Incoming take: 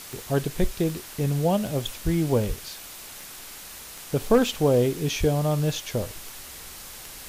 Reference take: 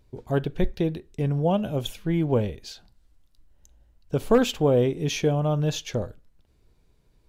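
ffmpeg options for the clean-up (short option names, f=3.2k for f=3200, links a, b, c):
-filter_complex "[0:a]adeclick=t=4,asplit=3[a][b][c];[a]afade=t=out:st=2.04:d=0.02[d];[b]highpass=f=140:w=0.5412,highpass=f=140:w=1.3066,afade=t=in:st=2.04:d=0.02,afade=t=out:st=2.16:d=0.02[e];[c]afade=t=in:st=2.16:d=0.02[f];[d][e][f]amix=inputs=3:normalize=0,asplit=3[g][h][i];[g]afade=t=out:st=2.47:d=0.02[j];[h]highpass=f=140:w=0.5412,highpass=f=140:w=1.3066,afade=t=in:st=2.47:d=0.02,afade=t=out:st=2.59:d=0.02[k];[i]afade=t=in:st=2.59:d=0.02[l];[j][k][l]amix=inputs=3:normalize=0,asplit=3[m][n][o];[m]afade=t=out:st=5.19:d=0.02[p];[n]highpass=f=140:w=0.5412,highpass=f=140:w=1.3066,afade=t=in:st=5.19:d=0.02,afade=t=out:st=5.31:d=0.02[q];[o]afade=t=in:st=5.31:d=0.02[r];[p][q][r]amix=inputs=3:normalize=0,afwtdn=0.01,asetnsamples=n=441:p=0,asendcmd='6.16 volume volume -10dB',volume=0dB"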